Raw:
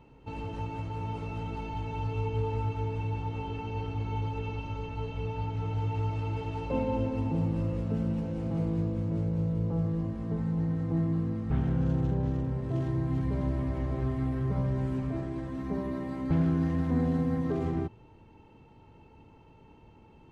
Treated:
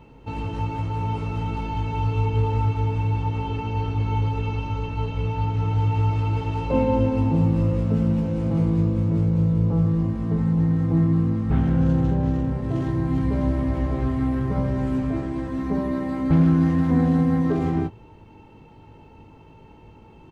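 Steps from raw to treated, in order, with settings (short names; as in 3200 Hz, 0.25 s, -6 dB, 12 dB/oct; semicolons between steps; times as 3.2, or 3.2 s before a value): doubler 19 ms -8 dB; gain +7 dB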